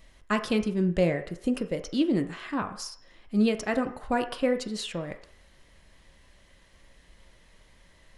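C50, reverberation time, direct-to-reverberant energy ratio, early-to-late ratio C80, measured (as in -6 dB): 11.5 dB, 0.60 s, 6.0 dB, 14.5 dB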